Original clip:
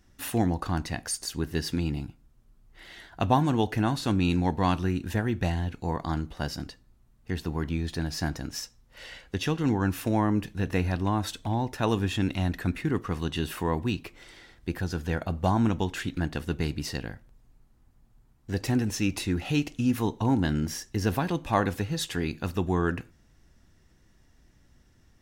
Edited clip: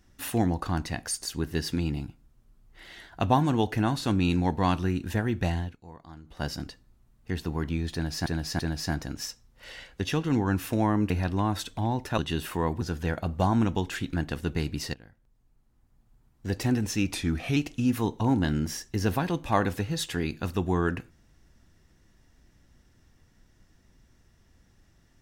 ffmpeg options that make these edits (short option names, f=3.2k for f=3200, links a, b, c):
-filter_complex "[0:a]asplit=11[a][b][c][d][e][f][g][h][i][j][k];[a]atrim=end=5.77,asetpts=PTS-STARTPTS,afade=t=out:st=5.57:d=0.2:silence=0.141254[l];[b]atrim=start=5.77:end=6.24,asetpts=PTS-STARTPTS,volume=-17dB[m];[c]atrim=start=6.24:end=8.262,asetpts=PTS-STARTPTS,afade=t=in:d=0.2:silence=0.141254[n];[d]atrim=start=7.928:end=8.262[o];[e]atrim=start=7.928:end=10.442[p];[f]atrim=start=10.778:end=11.862[q];[g]atrim=start=13.238:end=13.872[r];[h]atrim=start=14.848:end=16.98,asetpts=PTS-STARTPTS,afade=t=out:st=2.128:d=0.004:c=hsin:silence=0.125893[s];[i]atrim=start=16.98:end=19.184,asetpts=PTS-STARTPTS,afade=t=in:d=1.55:silence=0.125893[t];[j]atrim=start=19.18:end=19.57,asetpts=PTS-STARTPTS,asetrate=40572,aresample=44100[u];[k]atrim=start=19.566[v];[l][m][n]concat=n=3:v=0:a=1[w];[w][o]acrossfade=d=0.004:c1=hsin:c2=hsin[x];[x][p]acrossfade=d=0.004:c1=hsin:c2=hsin[y];[y][q]acrossfade=d=0.004:c1=hsin:c2=hsin[z];[z][r]acrossfade=d=0.004:c1=hsin:c2=hsin[aa];[s][t]concat=n=2:v=0:a=1[ab];[aa][ab]acrossfade=d=0.004:c1=hsin:c2=hsin[ac];[ac][u]acrossfade=d=0.004:c1=hsin:c2=hsin[ad];[ad][v]acrossfade=d=0.004:c1=hsin:c2=hsin"